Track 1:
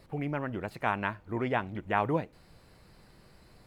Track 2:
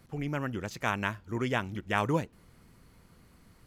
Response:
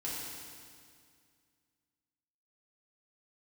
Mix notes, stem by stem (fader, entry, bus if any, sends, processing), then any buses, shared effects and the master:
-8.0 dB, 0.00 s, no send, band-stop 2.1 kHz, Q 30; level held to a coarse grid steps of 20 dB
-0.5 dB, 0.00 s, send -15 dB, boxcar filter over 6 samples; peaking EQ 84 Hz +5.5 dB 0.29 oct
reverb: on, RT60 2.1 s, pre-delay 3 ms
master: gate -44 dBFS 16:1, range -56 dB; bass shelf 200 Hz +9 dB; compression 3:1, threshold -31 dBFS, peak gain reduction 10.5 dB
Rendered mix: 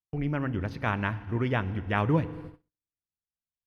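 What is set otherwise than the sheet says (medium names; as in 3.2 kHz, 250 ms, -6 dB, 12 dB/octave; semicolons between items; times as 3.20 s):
stem 2: polarity flipped; master: missing compression 3:1, threshold -31 dBFS, peak gain reduction 10.5 dB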